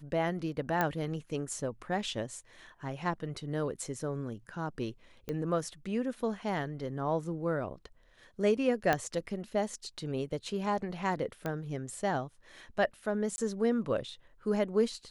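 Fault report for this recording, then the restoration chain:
0.81 pop -15 dBFS
5.29 pop -23 dBFS
8.93 pop -13 dBFS
11.46 pop -21 dBFS
13.36–13.38 gap 20 ms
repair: de-click; interpolate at 13.36, 20 ms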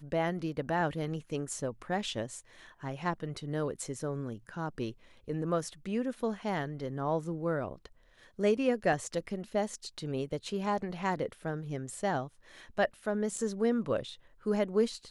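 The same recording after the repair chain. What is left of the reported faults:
8.93 pop
11.46 pop

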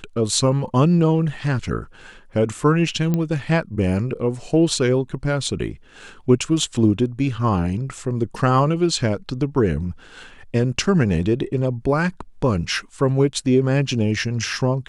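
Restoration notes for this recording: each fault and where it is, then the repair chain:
3.14 pop -10 dBFS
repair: de-click

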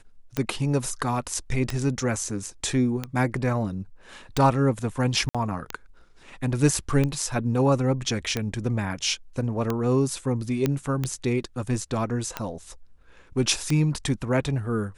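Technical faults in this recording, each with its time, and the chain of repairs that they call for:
tick 45 rpm -12 dBFS
5.29–5.35 gap 56 ms
10.66 pop -10 dBFS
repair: de-click; interpolate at 5.29, 56 ms

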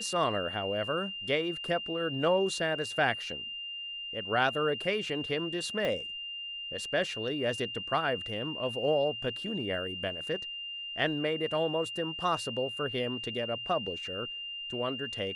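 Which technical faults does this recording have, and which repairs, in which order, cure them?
tone 2800 Hz -37 dBFS
5.85 pop -20 dBFS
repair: de-click; notch 2800 Hz, Q 30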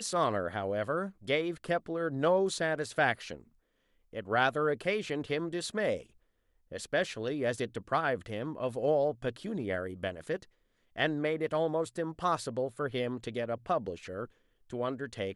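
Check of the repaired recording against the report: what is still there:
5.85 pop

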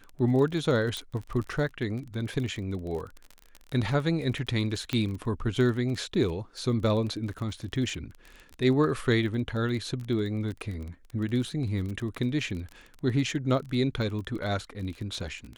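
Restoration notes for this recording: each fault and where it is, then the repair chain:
crackle 27/s -34 dBFS
0.97 pop
4.93 pop -15 dBFS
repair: de-click

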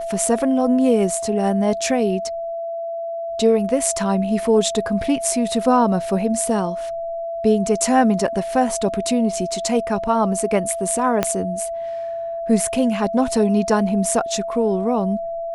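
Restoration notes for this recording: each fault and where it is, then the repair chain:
tone 670 Hz -24 dBFS
11.23 pop -4 dBFS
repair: de-click; notch 670 Hz, Q 30

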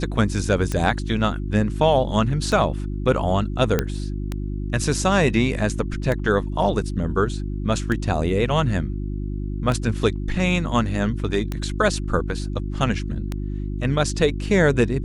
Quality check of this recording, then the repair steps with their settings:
hum 50 Hz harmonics 7 -27 dBFS
tick 33 1/3 rpm -12 dBFS
3.79 pop -6 dBFS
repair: de-click; de-hum 50 Hz, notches 7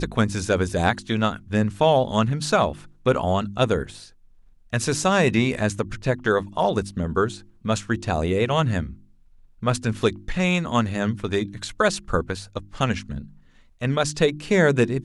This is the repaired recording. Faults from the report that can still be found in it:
none

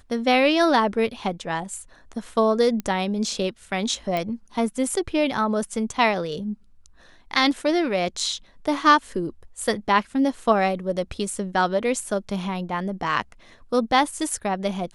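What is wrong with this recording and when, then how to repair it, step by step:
2.8 pop -16 dBFS
4.17 pop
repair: de-click

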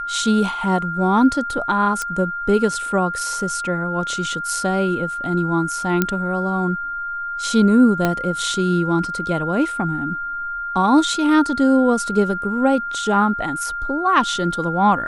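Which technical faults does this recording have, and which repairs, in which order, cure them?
tone 1400 Hz -24 dBFS
2.02 pop -10 dBFS
6.02 pop -3 dBFS
8.05 pop -5 dBFS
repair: de-click; notch 1400 Hz, Q 30

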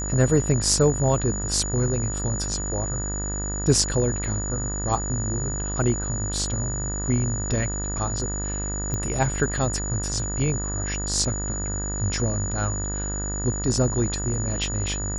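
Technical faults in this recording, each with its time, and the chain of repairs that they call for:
buzz 50 Hz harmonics 39 -30 dBFS
tone 6900 Hz -30 dBFS
8.94 pop -15 dBFS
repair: de-click; notch 6900 Hz, Q 30; de-hum 50 Hz, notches 39

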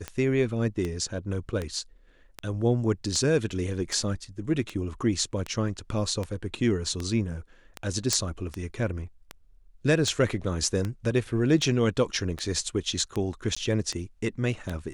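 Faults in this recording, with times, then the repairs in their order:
tick 78 rpm -17 dBFS
8.13 pop -9 dBFS
13.55–13.56 gap 15 ms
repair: de-click; interpolate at 13.55, 15 ms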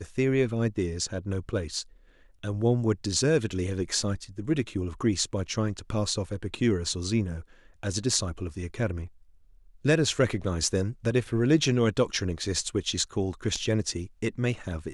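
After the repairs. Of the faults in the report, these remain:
none

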